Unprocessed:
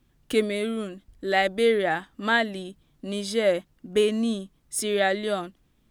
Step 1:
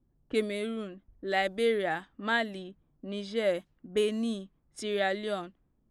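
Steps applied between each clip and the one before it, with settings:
low-pass that shuts in the quiet parts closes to 700 Hz, open at −21.5 dBFS
level −6 dB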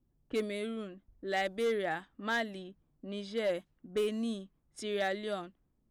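hard clipping −22 dBFS, distortion −18 dB
level −3.5 dB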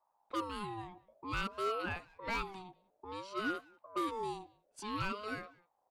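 far-end echo of a speakerphone 190 ms, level −21 dB
ring modulator whose carrier an LFO sweeps 720 Hz, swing 25%, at 0.55 Hz
level −1.5 dB

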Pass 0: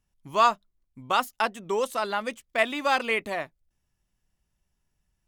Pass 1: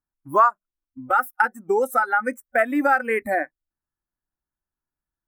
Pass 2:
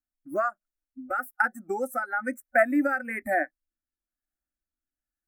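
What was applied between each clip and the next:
drawn EQ curve 200 Hz 0 dB, 300 Hz +11 dB, 460 Hz +3 dB, 1,500 Hz +13 dB, 3,300 Hz −21 dB, 15,000 Hz +10 dB; downward compressor 3 to 1, threshold −21 dBFS, peak gain reduction 12 dB; noise reduction from a noise print of the clip's start 22 dB; level +5 dB
phaser with its sweep stopped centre 660 Hz, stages 8; rotating-speaker cabinet horn 1.1 Hz

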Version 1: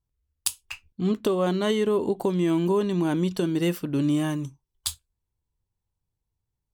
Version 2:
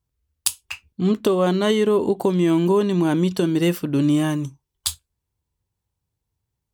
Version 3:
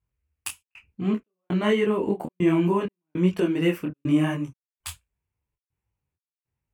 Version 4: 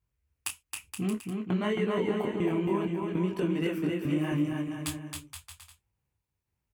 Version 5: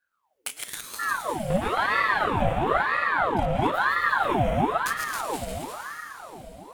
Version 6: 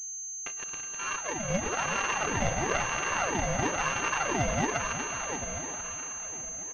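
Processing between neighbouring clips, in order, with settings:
high-pass filter 51 Hz; level +5 dB
high shelf with overshoot 3,100 Hz −7 dB, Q 3; gate pattern "xxxx.xxx..x" 100 BPM −60 dB; micro pitch shift up and down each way 41 cents
downward compressor 3 to 1, threshold −29 dBFS, peak gain reduction 10.5 dB; bouncing-ball delay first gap 270 ms, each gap 0.75×, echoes 5
feedback delay that plays each chunk backwards 110 ms, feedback 43%, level −3.5 dB; convolution reverb RT60 5.1 s, pre-delay 103 ms, DRR 2.5 dB; ring modulator whose carrier an LFO sweeps 950 Hz, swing 65%, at 1 Hz; level +4 dB
samples sorted by size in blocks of 16 samples; on a send: repeating echo 368 ms, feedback 44%, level −10 dB; on the sum: switching amplifier with a slow clock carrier 6,300 Hz; level −5 dB

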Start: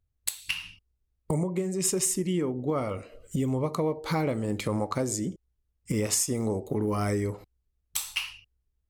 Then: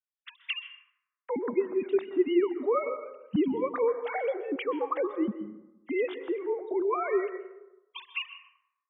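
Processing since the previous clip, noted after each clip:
three sine waves on the formant tracks
reverb reduction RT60 1.5 s
dense smooth reverb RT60 0.96 s, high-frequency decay 0.45×, pre-delay 115 ms, DRR 10.5 dB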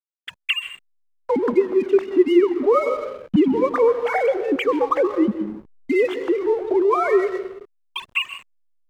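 noise gate −50 dBFS, range −13 dB
in parallel at 0 dB: downward compressor, threshold −34 dBFS, peak gain reduction 14.5 dB
on the sum: slack as between gear wheels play −42.5 dBFS
level +7.5 dB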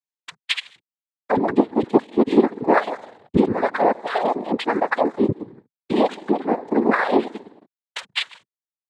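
reverb reduction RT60 1.2 s
dynamic equaliser 2,100 Hz, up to −7 dB, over −45 dBFS, Q 4.1
cochlear-implant simulation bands 6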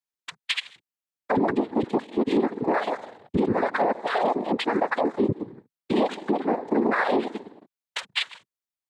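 brickwall limiter −13.5 dBFS, peak gain reduction 11.5 dB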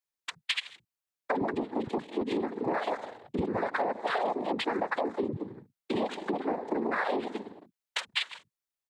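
downward compressor, threshold −26 dBFS, peak gain reduction 8.5 dB
multiband delay without the direct sound highs, lows 40 ms, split 210 Hz

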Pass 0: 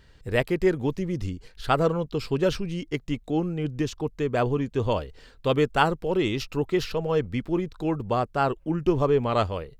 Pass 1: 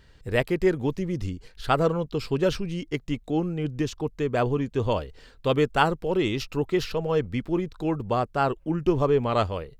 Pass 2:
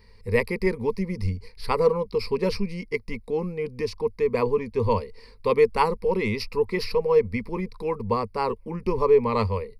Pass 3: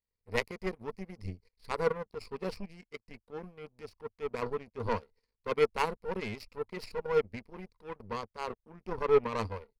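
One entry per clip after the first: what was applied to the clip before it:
no processing that can be heard
EQ curve with evenly spaced ripples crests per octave 0.89, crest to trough 18 dB; level −2.5 dB
transient designer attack −5 dB, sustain 0 dB; power curve on the samples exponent 2

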